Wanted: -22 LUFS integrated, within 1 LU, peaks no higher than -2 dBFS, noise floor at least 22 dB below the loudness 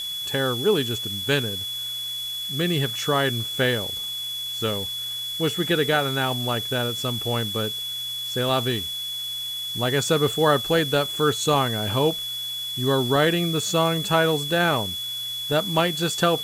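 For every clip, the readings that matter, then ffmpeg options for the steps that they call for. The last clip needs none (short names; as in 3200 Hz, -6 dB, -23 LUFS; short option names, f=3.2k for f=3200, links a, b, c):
steady tone 3400 Hz; tone level -28 dBFS; noise floor -31 dBFS; noise floor target -45 dBFS; loudness -23.0 LUFS; peak -6.0 dBFS; loudness target -22.0 LUFS
-> -af "bandreject=f=3.4k:w=30"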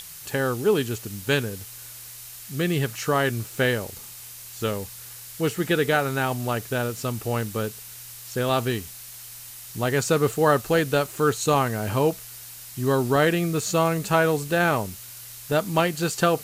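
steady tone none; noise floor -41 dBFS; noise floor target -46 dBFS
-> -af "afftdn=nr=6:nf=-41"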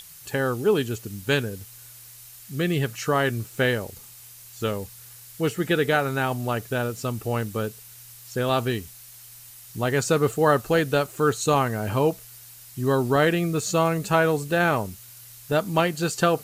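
noise floor -46 dBFS; noise floor target -47 dBFS
-> -af "afftdn=nr=6:nf=-46"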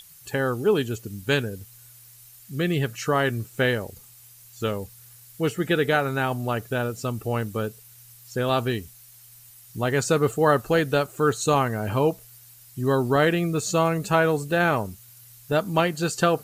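noise floor -50 dBFS; loudness -24.5 LUFS; peak -6.0 dBFS; loudness target -22.0 LUFS
-> -af "volume=2.5dB"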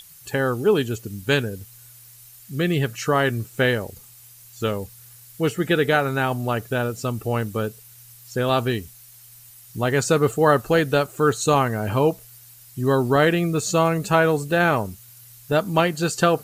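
loudness -22.0 LUFS; peak -3.5 dBFS; noise floor -47 dBFS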